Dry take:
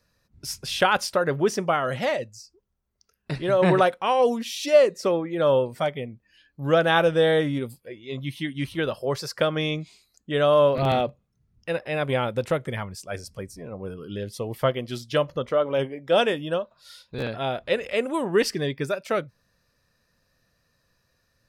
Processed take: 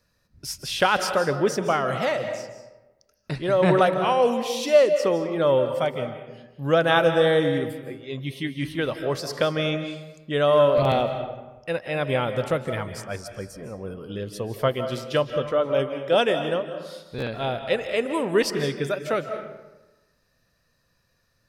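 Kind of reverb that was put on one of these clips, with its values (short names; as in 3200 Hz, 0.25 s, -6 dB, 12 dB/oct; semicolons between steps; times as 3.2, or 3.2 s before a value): digital reverb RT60 1.1 s, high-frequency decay 0.6×, pre-delay 0.12 s, DRR 8 dB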